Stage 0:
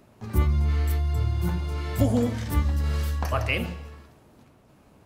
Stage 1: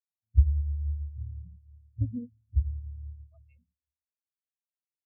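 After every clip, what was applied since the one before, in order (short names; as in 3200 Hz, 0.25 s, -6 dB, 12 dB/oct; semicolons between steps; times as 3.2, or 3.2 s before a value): Wiener smoothing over 41 samples; swelling echo 0.119 s, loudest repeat 5, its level -17 dB; spectral expander 4:1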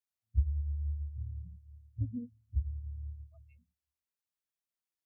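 bell 520 Hz -6.5 dB 0.2 oct; compressor 1.5:1, threshold -39 dBFS, peak gain reduction 9 dB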